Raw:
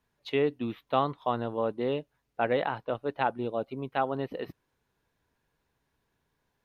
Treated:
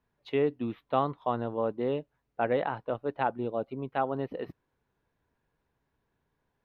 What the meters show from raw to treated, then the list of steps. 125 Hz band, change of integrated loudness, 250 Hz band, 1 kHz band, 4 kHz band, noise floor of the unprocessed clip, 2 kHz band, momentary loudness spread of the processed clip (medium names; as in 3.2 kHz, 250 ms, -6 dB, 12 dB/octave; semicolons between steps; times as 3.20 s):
0.0 dB, -0.5 dB, 0.0 dB, -1.0 dB, -6.0 dB, -79 dBFS, -3.0 dB, 8 LU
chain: treble shelf 3.1 kHz -12 dB